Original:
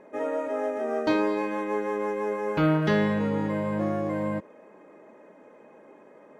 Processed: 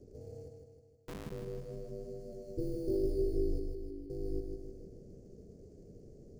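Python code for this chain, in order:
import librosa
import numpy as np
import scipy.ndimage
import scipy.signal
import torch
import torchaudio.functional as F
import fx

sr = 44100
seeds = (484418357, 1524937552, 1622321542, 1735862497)

p1 = fx.delta_mod(x, sr, bps=32000, step_db=-34.5)
p2 = fx.wow_flutter(p1, sr, seeds[0], rate_hz=2.1, depth_cents=30.0)
p3 = scipy.signal.sosfilt(scipy.signal.cheby2(4, 80, [940.0, 2800.0], 'bandstop', fs=sr, output='sos'), p2)
p4 = fx.peak_eq(p3, sr, hz=130.0, db=-5.5, octaves=2.1)
p5 = fx.sample_hold(p4, sr, seeds[1], rate_hz=4800.0, jitter_pct=0)
p6 = p4 + (p5 * librosa.db_to_amplitude(-9.5))
p7 = fx.schmitt(p6, sr, flips_db=-33.0, at=(0.48, 1.32))
p8 = p7 * np.sin(2.0 * np.pi * 180.0 * np.arange(len(p7)) / sr)
p9 = fx.doubler(p8, sr, ms=19.0, db=-2.5, at=(2.3, 2.96))
p10 = fx.vowel_filter(p9, sr, vowel='i', at=(3.59, 4.1))
p11 = p10 + fx.echo_feedback(p10, sr, ms=156, feedback_pct=55, wet_db=-5, dry=0)
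y = p11 * librosa.db_to_amplitude(1.0)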